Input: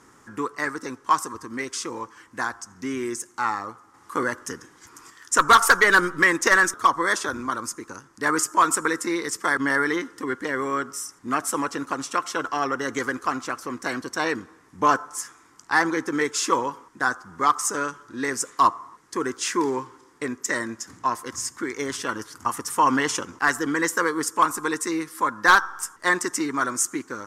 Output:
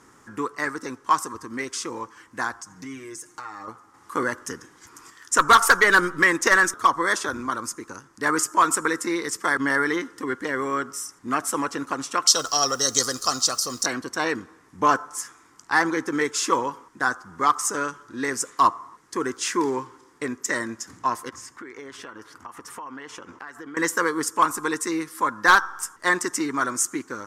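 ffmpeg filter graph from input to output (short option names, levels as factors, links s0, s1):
-filter_complex "[0:a]asettb=1/sr,asplit=3[s0][s1][s2];[s0]atrim=end=2.614[s3];[s1]atrim=start=2.61:end=3.68,asetpts=PTS-STARTPTS,afade=t=in:d=0.004:c=qsin,afade=t=out:st=1.066:d=0.004:c=qsin,acompressor=threshold=0.0178:ratio=5:attack=3.2:release=140:knee=1:detection=peak,aecho=1:1:6.5:0.76,atrim=end_sample=47187[s4];[s2]atrim=start=3.676[s5];[s3][s4]acrossfade=d=0.004:c1=hsin:c2=qsin[s6];[s6][s5]acrossfade=d=0.004:c1=qsin:c2=hsin,asettb=1/sr,asplit=3[s7][s8][s9];[s7]atrim=end=12.274[s10];[s8]atrim=start=12.27:end=13.86,asetpts=PTS-STARTPTS,afade=t=in:d=0.004:c=qsin,afade=t=out:st=1.586:d=0.004:c=qsin,highshelf=f=3200:t=q:w=3:g=13.5,aecho=1:1:1.6:0.47,atrim=end_sample=70119,acrusher=bits=9:dc=4:mix=0:aa=0.000001[s11];[s9]atrim=start=13.856[s12];[s10][s11]acrossfade=d=0.004:c1=hsin:c2=qsin[s13];[s13][s12]acrossfade=d=0.004:c1=qsin:c2=hsin,asettb=1/sr,asplit=3[s14][s15][s16];[s14]atrim=end=21.294[s17];[s15]atrim=start=21.29:end=23.77,asetpts=PTS-STARTPTS,afade=t=in:d=0.004:c=qsin,afade=t=out:st=2.476:d=0.004:c=qsin,bass=f=250:g=-6,treble=f=4000:g=-11,acompressor=threshold=0.0158:ratio=6:attack=3.2:release=140:knee=1:detection=peak[s18];[s16]atrim=start=23.766[s19];[s17][s18]acrossfade=d=0.004:c1=hsin:c2=qsin[s20];[s20][s19]acrossfade=d=0.004:c1=qsin:c2=hsin"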